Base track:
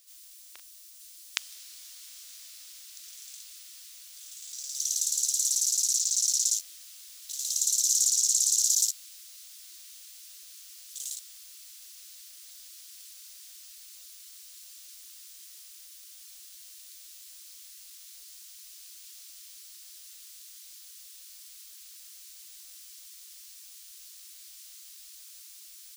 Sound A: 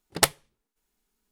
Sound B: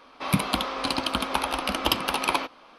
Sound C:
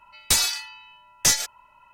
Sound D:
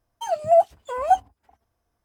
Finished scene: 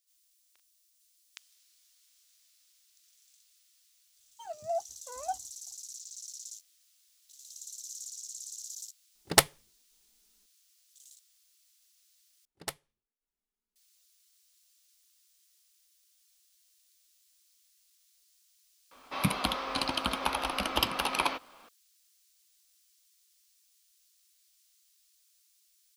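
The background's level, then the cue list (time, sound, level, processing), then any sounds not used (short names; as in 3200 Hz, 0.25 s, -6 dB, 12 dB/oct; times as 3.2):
base track -19 dB
4.18 add D -17 dB
9.15 add A -0.5 dB
12.45 replace with A -17.5 dB
18.91 add B -4 dB + bell 320 Hz -3 dB 1.4 oct
not used: C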